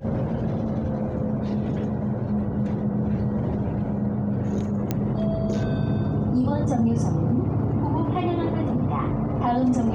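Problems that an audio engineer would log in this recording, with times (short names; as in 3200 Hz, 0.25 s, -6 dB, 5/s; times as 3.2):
4.91 pop -11 dBFS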